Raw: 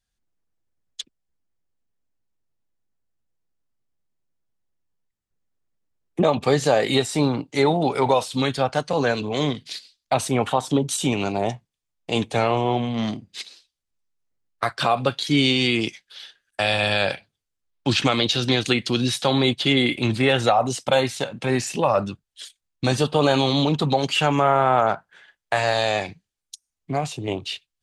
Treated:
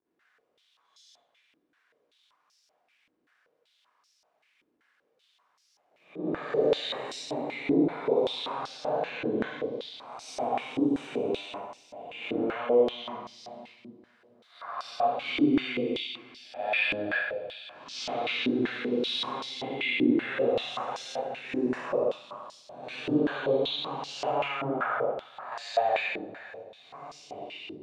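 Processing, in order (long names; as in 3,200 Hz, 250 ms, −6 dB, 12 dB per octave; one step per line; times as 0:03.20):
spectrum smeared in time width 290 ms
surface crackle 600 per second −46 dBFS
delay that swaps between a low-pass and a high-pass 126 ms, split 1,200 Hz, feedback 70%, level −7 dB
in parallel at +1 dB: output level in coarse steps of 14 dB
on the sum: convolution reverb RT60 0.90 s, pre-delay 40 ms, DRR −7.5 dB
band-pass on a step sequencer 5.2 Hz 320–5,300 Hz
level −8.5 dB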